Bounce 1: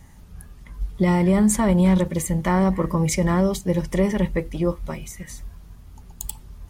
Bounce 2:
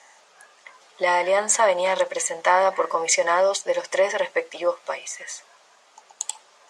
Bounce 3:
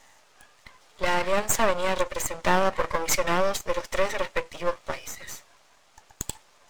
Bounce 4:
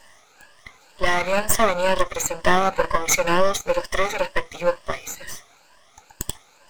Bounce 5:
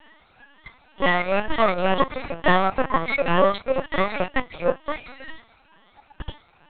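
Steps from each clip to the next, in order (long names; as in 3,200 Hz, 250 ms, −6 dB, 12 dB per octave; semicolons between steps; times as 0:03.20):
elliptic band-pass filter 570–7,500 Hz, stop band 80 dB; level +7.5 dB
half-wave rectification
rippled gain that drifts along the octave scale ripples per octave 1.3, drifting +2.1 Hz, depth 11 dB; level +3 dB
linear-prediction vocoder at 8 kHz pitch kept; level −1 dB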